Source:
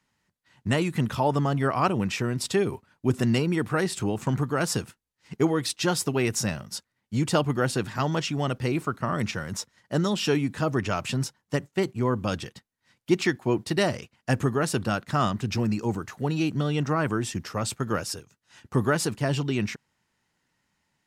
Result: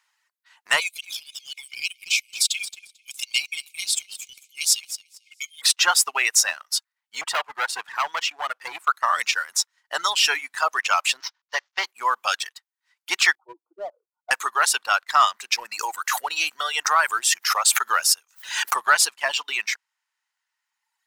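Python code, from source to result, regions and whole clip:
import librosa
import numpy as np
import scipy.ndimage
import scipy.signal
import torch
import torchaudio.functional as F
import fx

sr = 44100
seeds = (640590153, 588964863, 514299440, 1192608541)

y = fx.chain(x, sr, fx.brickwall_highpass(low_hz=2100.0),
    fx.notch(hz=2700.0, q=20.0),
    fx.echo_feedback(ms=222, feedback_pct=38, wet_db=-9.0), at=(0.8, 5.62))
y = fx.chain(y, sr, fx.highpass(hz=69.0, slope=12),
    fx.high_shelf(hz=3400.0, db=-10.5),
    fx.clip_hard(threshold_db=-24.5), at=(7.21, 8.88))
y = fx.chain(y, sr, fx.cvsd(bps=32000),
    fx.highpass(hz=410.0, slope=12), at=(11.2, 11.87))
y = fx.chain(y, sr, fx.spec_expand(power=2.0),
    fx.brickwall_bandpass(low_hz=280.0, high_hz=1500.0),
    fx.peak_eq(hz=1000.0, db=-7.0, octaves=1.6), at=(13.35, 14.31))
y = fx.chain(y, sr, fx.high_shelf(hz=10000.0, db=10.0),
    fx.pre_swell(db_per_s=71.0), at=(15.74, 18.76))
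y = fx.dereverb_blind(y, sr, rt60_s=2.0)
y = scipy.signal.sosfilt(scipy.signal.butter(4, 910.0, 'highpass', fs=sr, output='sos'), y)
y = fx.leveller(y, sr, passes=1)
y = y * 10.0 ** (8.5 / 20.0)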